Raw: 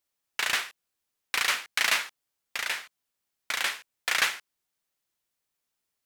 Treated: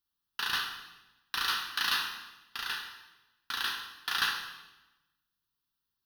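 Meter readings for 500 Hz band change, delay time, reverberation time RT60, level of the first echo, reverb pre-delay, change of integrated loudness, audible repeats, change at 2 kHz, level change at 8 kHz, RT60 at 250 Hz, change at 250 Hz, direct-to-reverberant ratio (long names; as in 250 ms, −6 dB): −12.5 dB, no echo audible, 1.1 s, no echo audible, 5 ms, −4.5 dB, no echo audible, −5.5 dB, −10.0 dB, 1.2 s, −1.5 dB, 2.0 dB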